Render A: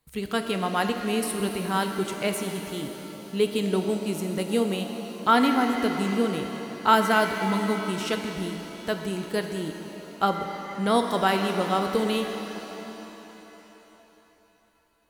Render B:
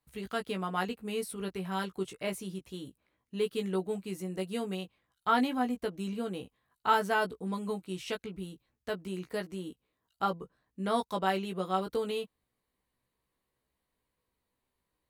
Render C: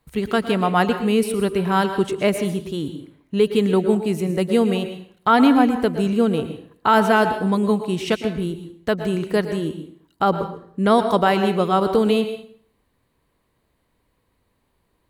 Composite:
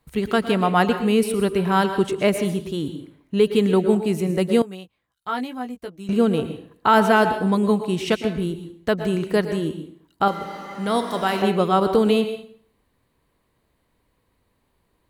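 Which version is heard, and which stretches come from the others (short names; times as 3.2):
C
4.62–6.09 from B
10.28–11.42 from A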